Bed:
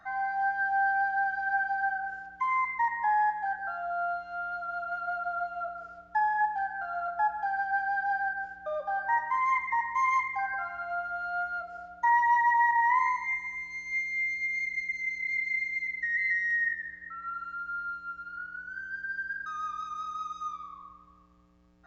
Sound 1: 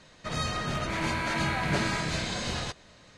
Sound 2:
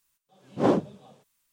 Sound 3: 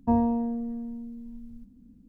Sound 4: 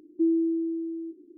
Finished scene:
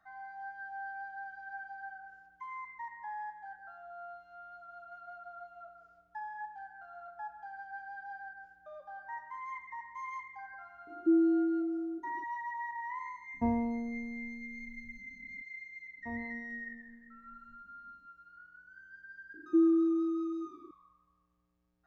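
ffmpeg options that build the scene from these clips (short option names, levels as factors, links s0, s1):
-filter_complex "[4:a]asplit=2[s0][s1];[3:a]asplit=2[s2][s3];[0:a]volume=0.168[s4];[s3]acrossover=split=500[s5][s6];[s5]aeval=exprs='val(0)*(1-0.5/2+0.5/2*cos(2*PI*5.2*n/s))':c=same[s7];[s6]aeval=exprs='val(0)*(1-0.5/2-0.5/2*cos(2*PI*5.2*n/s))':c=same[s8];[s7][s8]amix=inputs=2:normalize=0[s9];[s0]atrim=end=1.37,asetpts=PTS-STARTPTS,volume=0.794,afade=t=in:d=0.004:c=hsin,afade=t=out:st=1.366:d=0.004:c=hsin,adelay=10870[s10];[s2]atrim=end=2.08,asetpts=PTS-STARTPTS,volume=0.422,afade=t=in:d=0.004:c=hsin,afade=t=out:st=2.076:d=0.004:c=hsin,adelay=13340[s11];[s9]atrim=end=2.08,asetpts=PTS-STARTPTS,volume=0.158,afade=t=in:d=0.004:c=hsin,afade=t=out:st=2.076:d=0.004:c=hsin,adelay=15980[s12];[s1]atrim=end=1.37,asetpts=PTS-STARTPTS,volume=0.841,afade=t=in:d=0.004:c=hsin,afade=t=out:st=1.366:d=0.004:c=hsin,adelay=19340[s13];[s4][s10][s11][s12][s13]amix=inputs=5:normalize=0"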